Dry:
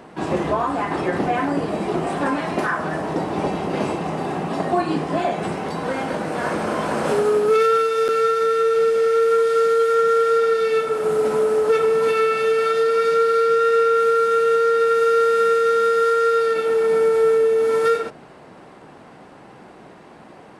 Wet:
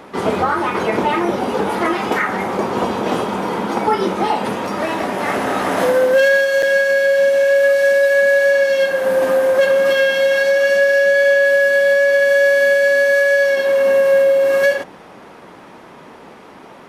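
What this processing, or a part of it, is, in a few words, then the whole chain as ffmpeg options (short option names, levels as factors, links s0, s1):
nightcore: -af "asetrate=53802,aresample=44100,volume=1.58"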